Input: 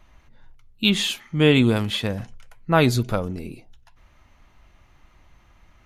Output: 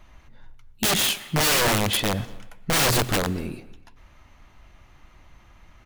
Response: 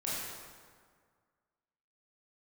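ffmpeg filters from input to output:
-filter_complex "[0:a]aeval=exprs='(mod(8.41*val(0)+1,2)-1)/8.41':c=same,asplit=2[a][b];[b]adelay=240,highpass=300,lowpass=3.4k,asoftclip=type=hard:threshold=-27.5dB,volume=-21dB[c];[a][c]amix=inputs=2:normalize=0,asplit=2[d][e];[1:a]atrim=start_sample=2205,asetrate=74970,aresample=44100,adelay=90[f];[e][f]afir=irnorm=-1:irlink=0,volume=-19dB[g];[d][g]amix=inputs=2:normalize=0,volume=3dB"

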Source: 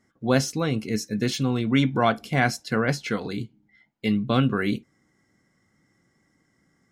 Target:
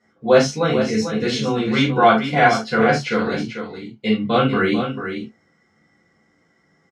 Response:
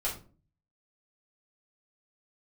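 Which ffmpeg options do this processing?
-filter_complex "[0:a]highpass=120,lowpass=5.5k,aecho=1:1:443:0.376[a];[1:a]atrim=start_sample=2205,atrim=end_sample=3969[b];[a][b]afir=irnorm=-1:irlink=0,volume=2.5dB"

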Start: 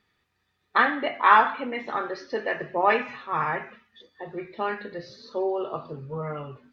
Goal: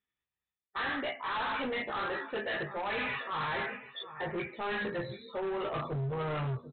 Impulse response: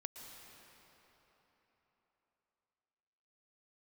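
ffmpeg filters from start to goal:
-filter_complex "[0:a]aemphasis=mode=production:type=75kf,afftdn=nr=29:nf=-45,asubboost=boost=3.5:cutoff=130,areverse,acompressor=threshold=-32dB:ratio=12,areverse,asplit=2[a][b];[b]adelay=15,volume=-4dB[c];[a][c]amix=inputs=2:normalize=0,aecho=1:1:742|1484:0.126|0.0352,aresample=8000,asoftclip=type=hard:threshold=-36.5dB,aresample=44100,volume=5dB"

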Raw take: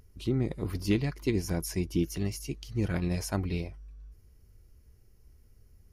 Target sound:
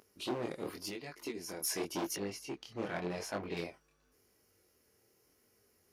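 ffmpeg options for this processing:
-filter_complex "[0:a]asplit=3[a][b][c];[a]afade=t=out:st=0.68:d=0.02[d];[b]acompressor=threshold=-36dB:ratio=5,afade=t=in:st=0.68:d=0.02,afade=t=out:st=1.61:d=0.02[e];[c]afade=t=in:st=1.61:d=0.02[f];[d][e][f]amix=inputs=3:normalize=0,asoftclip=type=hard:threshold=-29.5dB,highpass=370,flanger=delay=19.5:depth=6.7:speed=0.9,asettb=1/sr,asplit=3[g][h][i];[g]atrim=end=2.164[j];[h]atrim=start=2.16:end=3.57,asetpts=PTS-STARTPTS,afade=t=in:d=0.004:c=qsin,afade=t=out:st=1.406:d=0.004:c=qsin,lowpass=f=2.3k:p=1[k];[i]atrim=start=3.566[l];[j][k]acrossfade=d=0.004:c1=hsin:c2=qsin[m];[m][l]acrossfade=d=0.004:c1=qsin:c2=hsin,volume=6dB"

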